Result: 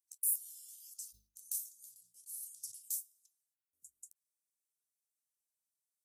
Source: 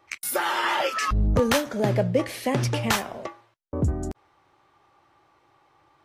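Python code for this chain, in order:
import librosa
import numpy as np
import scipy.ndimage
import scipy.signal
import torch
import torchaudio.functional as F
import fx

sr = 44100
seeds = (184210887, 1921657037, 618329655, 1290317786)

y = scipy.signal.sosfilt(scipy.signal.cheby2(4, 70, 2100.0, 'highpass', fs=sr, output='sos'), x)
y = fx.sustainer(y, sr, db_per_s=150.0, at=(0.98, 3.0))
y = F.gain(torch.from_numpy(y), -1.0).numpy()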